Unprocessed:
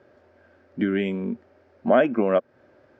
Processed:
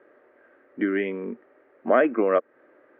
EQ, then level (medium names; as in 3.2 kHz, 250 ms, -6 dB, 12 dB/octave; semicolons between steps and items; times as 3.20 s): cabinet simulation 280–2900 Hz, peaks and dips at 310 Hz +7 dB, 460 Hz +7 dB, 1.2 kHz +8 dB, 1.9 kHz +9 dB; -3.5 dB